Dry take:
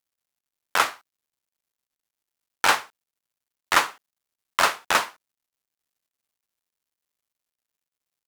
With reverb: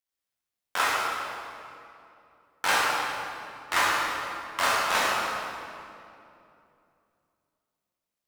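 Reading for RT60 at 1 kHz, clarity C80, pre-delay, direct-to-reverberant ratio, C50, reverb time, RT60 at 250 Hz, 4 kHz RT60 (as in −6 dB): 2.6 s, −1.0 dB, 11 ms, −7.5 dB, −3.0 dB, 2.7 s, 3.2 s, 1.8 s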